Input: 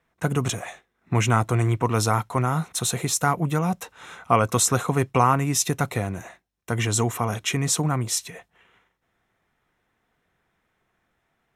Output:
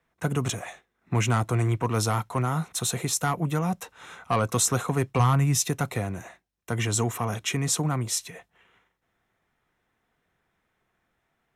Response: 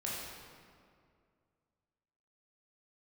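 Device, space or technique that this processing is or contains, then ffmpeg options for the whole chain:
one-band saturation: -filter_complex "[0:a]asplit=3[link_01][link_02][link_03];[link_01]afade=type=out:start_time=5.18:duration=0.02[link_04];[link_02]asubboost=boost=4.5:cutoff=140,afade=type=in:start_time=5.18:duration=0.02,afade=type=out:start_time=5.59:duration=0.02[link_05];[link_03]afade=type=in:start_time=5.59:duration=0.02[link_06];[link_04][link_05][link_06]amix=inputs=3:normalize=0,acrossover=split=240|4300[link_07][link_08][link_09];[link_08]asoftclip=type=tanh:threshold=-15dB[link_10];[link_07][link_10][link_09]amix=inputs=3:normalize=0,volume=-2.5dB"

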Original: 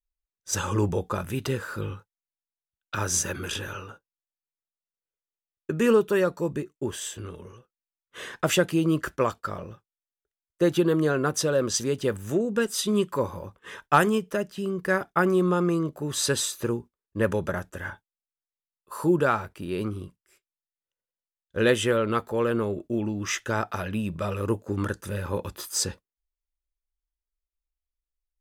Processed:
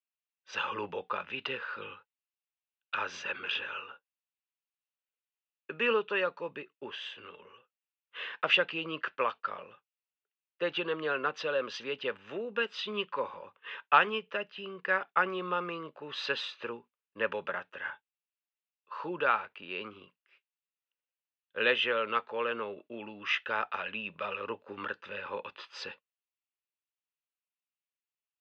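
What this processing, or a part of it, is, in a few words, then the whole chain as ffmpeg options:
kitchen radio: -filter_complex "[0:a]highpass=230,equalizer=frequency=340:width_type=q:width=4:gain=-7,equalizer=frequency=670:width_type=q:width=4:gain=-6,equalizer=frequency=2700:width_type=q:width=4:gain=9,lowpass=frequency=4000:width=0.5412,lowpass=frequency=4000:width=1.3066,acrossover=split=470 5100:gain=0.224 1 0.112[link_01][link_02][link_03];[link_01][link_02][link_03]amix=inputs=3:normalize=0,volume=-2dB"

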